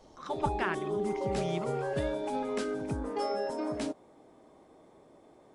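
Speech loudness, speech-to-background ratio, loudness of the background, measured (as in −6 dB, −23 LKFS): −37.5 LKFS, −3.5 dB, −34.0 LKFS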